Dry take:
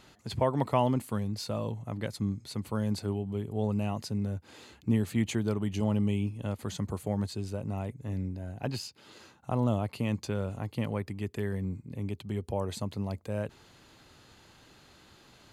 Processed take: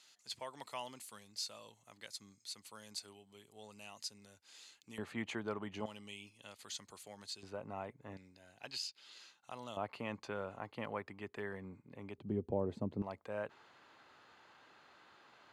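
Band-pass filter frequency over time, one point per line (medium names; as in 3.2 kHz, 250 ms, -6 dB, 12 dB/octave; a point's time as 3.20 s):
band-pass filter, Q 0.91
6.2 kHz
from 4.98 s 1.2 kHz
from 5.86 s 4.9 kHz
from 7.43 s 1.2 kHz
from 8.17 s 4.2 kHz
from 9.77 s 1.2 kHz
from 12.18 s 320 Hz
from 13.02 s 1.2 kHz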